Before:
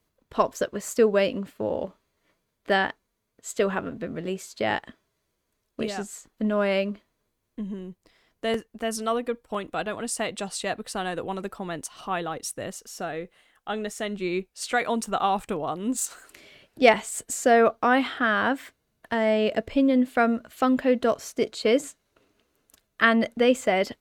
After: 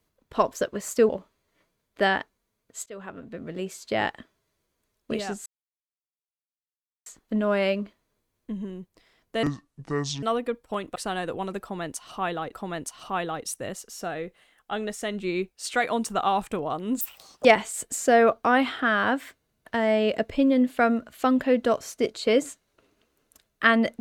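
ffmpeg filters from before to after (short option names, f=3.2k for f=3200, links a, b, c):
-filter_complex "[0:a]asplit=10[a][b][c][d][e][f][g][h][i][j];[a]atrim=end=1.092[k];[b]atrim=start=1.778:end=3.55,asetpts=PTS-STARTPTS,afade=t=out:st=1.768:d=0.004:c=hsin:silence=0.0668344[l];[c]atrim=start=3.55:end=6.15,asetpts=PTS-STARTPTS,afade=t=in:d=0.96:silence=0.0668344,afade=t=out:st=2.596:d=0.004:c=hsin,apad=pad_dur=1.6[m];[d]atrim=start=6.15:end=8.524,asetpts=PTS-STARTPTS,afade=t=in:d=0.004:c=hsin[n];[e]atrim=start=8.52:end=9.03,asetpts=PTS-STARTPTS,asetrate=28224,aresample=44100,atrim=end_sample=35142,asetpts=PTS-STARTPTS[o];[f]atrim=start=9.026:end=9.762[p];[g]atrim=start=10.848:end=12.422[q];[h]atrim=start=11.498:end=15.984[r];[i]atrim=start=15.98:end=16.83,asetpts=PTS-STARTPTS,asetrate=84672,aresample=44100,atrim=end_sample=19523,asetpts=PTS-STARTPTS[s];[j]atrim=start=16.826[t];[l][m][n]concat=n=3:v=0:a=1[u];[k][u]acrossfade=d=0.004:c1=hsin:c2=hsin[v];[v][o]acrossfade=d=0.004:c1=hsin:c2=hsin[w];[w][p]acrossfade=d=0.004:c1=hsin:c2=hsin[x];[x][q]acrossfade=d=0.004:c1=hsin:c2=hsin[y];[y][r]acrossfade=d=0.004:c1=hsin:c2=hsin[z];[z][s]acrossfade=d=0.004:c1=hsin:c2=hsin[aa];[aa][t]acrossfade=d=0.004:c1=hsin:c2=hsin"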